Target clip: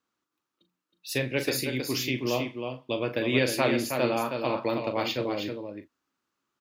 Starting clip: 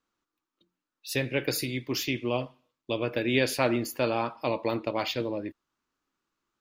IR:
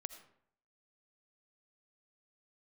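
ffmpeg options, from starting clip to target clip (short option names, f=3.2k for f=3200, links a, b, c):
-filter_complex "[0:a]highpass=84,asplit=2[a][b];[b]adelay=39,volume=-10dB[c];[a][c]amix=inputs=2:normalize=0,aecho=1:1:318:0.501"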